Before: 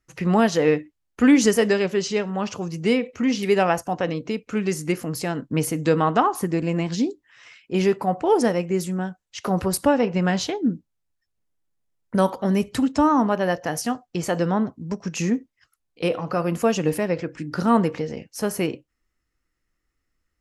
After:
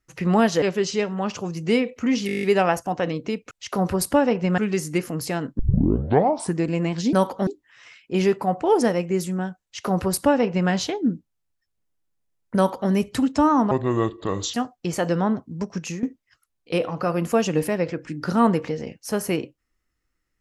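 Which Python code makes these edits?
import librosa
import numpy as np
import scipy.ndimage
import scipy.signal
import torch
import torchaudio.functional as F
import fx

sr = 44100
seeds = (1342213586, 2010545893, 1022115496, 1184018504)

y = fx.edit(x, sr, fx.cut(start_s=0.62, length_s=1.17),
    fx.stutter(start_s=3.44, slice_s=0.02, count=9),
    fx.tape_start(start_s=5.53, length_s=0.98),
    fx.duplicate(start_s=9.23, length_s=1.07, to_s=4.52),
    fx.duplicate(start_s=12.16, length_s=0.34, to_s=7.07),
    fx.speed_span(start_s=13.31, length_s=0.53, speed=0.64),
    fx.fade_out_to(start_s=15.07, length_s=0.26, floor_db=-15.0), tone=tone)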